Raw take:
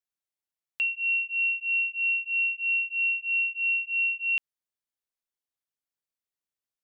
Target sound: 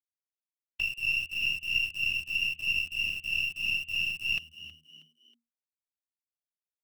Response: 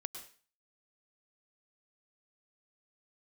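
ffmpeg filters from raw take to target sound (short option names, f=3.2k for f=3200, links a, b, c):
-filter_complex "[0:a]afftfilt=real='hypot(re,im)*cos(2*PI*random(0))':imag='hypot(re,im)*sin(2*PI*random(1))':win_size=512:overlap=0.75,asplit=2[a][b];[b]acrusher=bits=4:dc=4:mix=0:aa=0.000001,volume=-5dB[c];[a][c]amix=inputs=2:normalize=0,agate=range=-15dB:threshold=-43dB:ratio=16:detection=peak,asplit=4[d][e][f][g];[e]adelay=319,afreqshift=78,volume=-16dB[h];[f]adelay=638,afreqshift=156,volume=-24.4dB[i];[g]adelay=957,afreqshift=234,volume=-32.8dB[j];[d][h][i][j]amix=inputs=4:normalize=0"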